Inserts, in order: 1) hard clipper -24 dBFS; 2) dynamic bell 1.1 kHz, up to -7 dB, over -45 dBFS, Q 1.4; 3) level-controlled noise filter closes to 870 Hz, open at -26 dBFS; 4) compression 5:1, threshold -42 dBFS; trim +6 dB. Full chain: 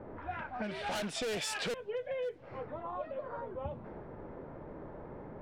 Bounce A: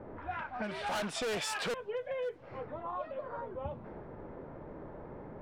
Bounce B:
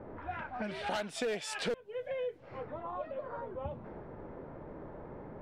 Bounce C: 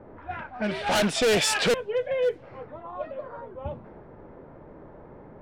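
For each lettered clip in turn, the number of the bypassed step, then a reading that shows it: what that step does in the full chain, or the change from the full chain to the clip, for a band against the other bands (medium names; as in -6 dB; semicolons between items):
2, 1 kHz band +2.5 dB; 1, distortion -3 dB; 4, crest factor change +1.5 dB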